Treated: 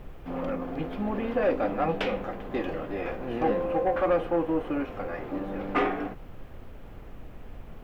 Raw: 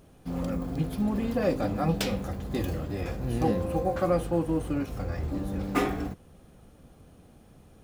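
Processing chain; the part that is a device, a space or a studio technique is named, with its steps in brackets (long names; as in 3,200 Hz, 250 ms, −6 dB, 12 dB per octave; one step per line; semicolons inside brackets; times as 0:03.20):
aircraft cabin announcement (band-pass filter 350–3,200 Hz; soft clipping −22.5 dBFS, distortion −15 dB; brown noise bed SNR 11 dB)
flat-topped bell 6,300 Hz −9.5 dB
level +5.5 dB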